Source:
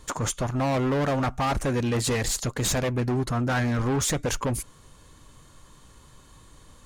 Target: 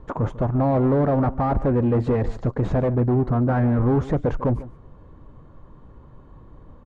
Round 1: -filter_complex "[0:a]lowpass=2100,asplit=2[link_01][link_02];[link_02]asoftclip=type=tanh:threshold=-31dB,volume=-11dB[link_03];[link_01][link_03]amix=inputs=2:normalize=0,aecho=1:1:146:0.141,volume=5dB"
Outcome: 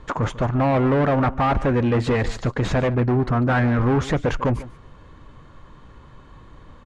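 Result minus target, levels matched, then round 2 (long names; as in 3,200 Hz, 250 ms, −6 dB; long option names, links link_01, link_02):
2,000 Hz band +10.0 dB
-filter_complex "[0:a]lowpass=820,asplit=2[link_01][link_02];[link_02]asoftclip=type=tanh:threshold=-31dB,volume=-11dB[link_03];[link_01][link_03]amix=inputs=2:normalize=0,aecho=1:1:146:0.141,volume=5dB"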